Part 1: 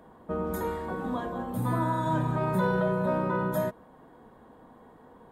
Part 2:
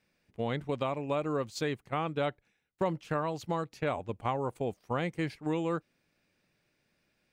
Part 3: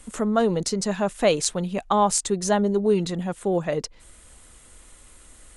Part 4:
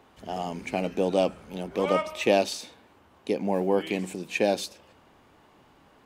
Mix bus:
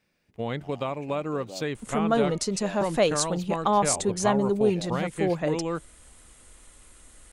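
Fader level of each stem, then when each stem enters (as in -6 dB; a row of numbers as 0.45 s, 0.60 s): mute, +2.0 dB, -2.5 dB, -18.5 dB; mute, 0.00 s, 1.75 s, 0.35 s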